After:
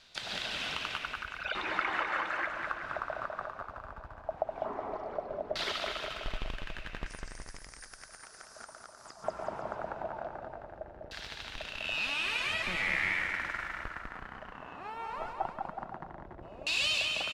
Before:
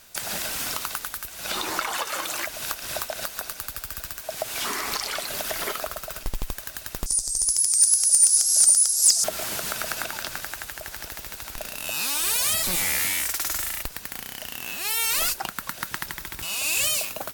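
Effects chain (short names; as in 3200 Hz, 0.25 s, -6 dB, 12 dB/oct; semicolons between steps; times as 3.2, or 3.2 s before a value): 1–1.55 formant sharpening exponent 3; bouncing-ball echo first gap 0.2 s, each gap 0.85×, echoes 5; LFO low-pass saw down 0.18 Hz 560–4000 Hz; gain -8 dB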